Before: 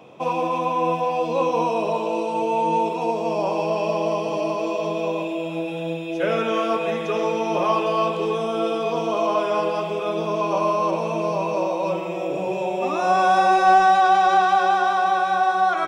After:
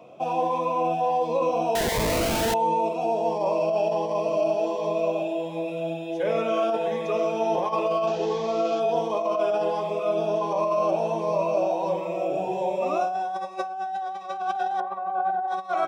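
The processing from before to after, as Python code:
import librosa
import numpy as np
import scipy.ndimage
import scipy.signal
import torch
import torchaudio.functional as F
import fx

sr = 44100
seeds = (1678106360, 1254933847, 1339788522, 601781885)

y = fx.delta_mod(x, sr, bps=32000, step_db=-29.0, at=(8.07, 8.8))
y = scipy.signal.sosfilt(scipy.signal.butter(2, 47.0, 'highpass', fs=sr, output='sos'), y)
y = fx.peak_eq(y, sr, hz=690.0, db=10.5, octaves=0.84)
y = fx.schmitt(y, sr, flips_db=-22.0, at=(1.75, 2.54))
y = fx.over_compress(y, sr, threshold_db=-15.0, ratio=-1.0)
y = fx.lowpass(y, sr, hz=1400.0, slope=12, at=(14.8, 15.48))
y = fx.notch_cascade(y, sr, direction='rising', hz=1.4)
y = y * librosa.db_to_amplitude(-7.0)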